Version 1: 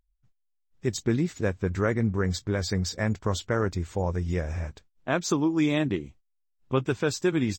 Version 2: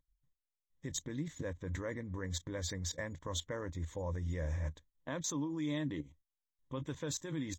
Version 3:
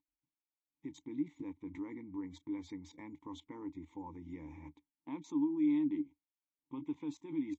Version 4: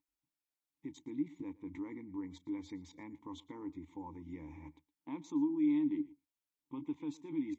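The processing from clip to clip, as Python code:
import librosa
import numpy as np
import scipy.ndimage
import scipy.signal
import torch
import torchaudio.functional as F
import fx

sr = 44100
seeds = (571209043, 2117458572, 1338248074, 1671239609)

y1 = fx.level_steps(x, sr, step_db=18)
y1 = fx.ripple_eq(y1, sr, per_octave=1.1, db=11)
y1 = F.gain(torch.from_numpy(y1), -3.5).numpy()
y2 = fx.vowel_filter(y1, sr, vowel='u')
y2 = F.gain(torch.from_numpy(y2), 8.0).numpy()
y3 = y2 + 10.0 ** (-21.5 / 20.0) * np.pad(y2, (int(116 * sr / 1000.0), 0))[:len(y2)]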